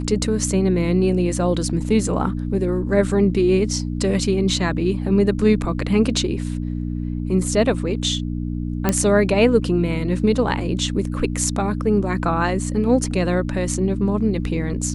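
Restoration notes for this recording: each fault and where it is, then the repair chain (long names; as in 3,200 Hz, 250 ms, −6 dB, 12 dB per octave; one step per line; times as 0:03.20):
mains hum 60 Hz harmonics 5 −25 dBFS
0:08.89: click −4 dBFS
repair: click removal
hum removal 60 Hz, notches 5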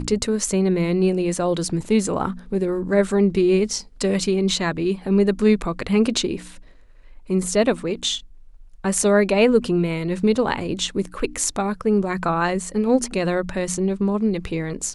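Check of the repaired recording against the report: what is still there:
none of them is left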